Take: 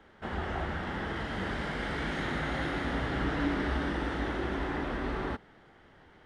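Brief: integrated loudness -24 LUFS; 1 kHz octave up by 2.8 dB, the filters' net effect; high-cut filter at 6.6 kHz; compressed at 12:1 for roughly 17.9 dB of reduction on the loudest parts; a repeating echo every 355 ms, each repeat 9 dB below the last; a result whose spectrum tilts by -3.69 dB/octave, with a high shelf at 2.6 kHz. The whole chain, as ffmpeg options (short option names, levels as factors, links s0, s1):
-af "lowpass=6600,equalizer=f=1000:t=o:g=3,highshelf=f=2600:g=4.5,acompressor=threshold=0.00708:ratio=12,aecho=1:1:355|710|1065|1420:0.355|0.124|0.0435|0.0152,volume=13.3"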